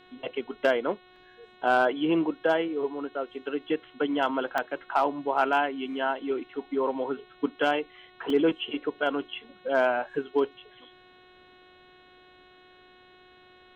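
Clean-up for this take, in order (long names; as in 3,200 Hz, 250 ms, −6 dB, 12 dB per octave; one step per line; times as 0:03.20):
clipped peaks rebuilt −14 dBFS
hum removal 365.8 Hz, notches 11
repair the gap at 0:01.16/0:04.58/0:08.30, 2.1 ms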